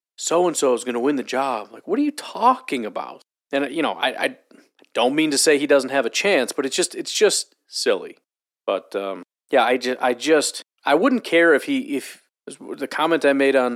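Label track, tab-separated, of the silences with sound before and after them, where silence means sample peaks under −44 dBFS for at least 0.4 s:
8.170000	8.680000	silence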